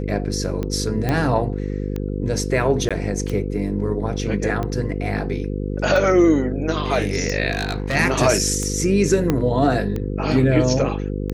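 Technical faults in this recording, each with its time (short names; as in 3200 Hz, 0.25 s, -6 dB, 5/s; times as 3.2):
buzz 50 Hz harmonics 10 -25 dBFS
tick 45 rpm -14 dBFS
1.09 pop -9 dBFS
2.89–2.91 gap 16 ms
7.51–7.96 clipped -18.5 dBFS
9.3 pop -6 dBFS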